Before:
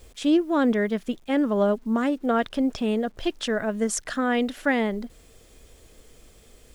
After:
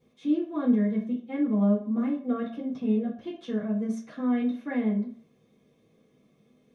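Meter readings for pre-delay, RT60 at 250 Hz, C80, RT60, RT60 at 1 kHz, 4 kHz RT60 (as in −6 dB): 3 ms, 0.40 s, 12.5 dB, 0.50 s, 0.55 s, 0.45 s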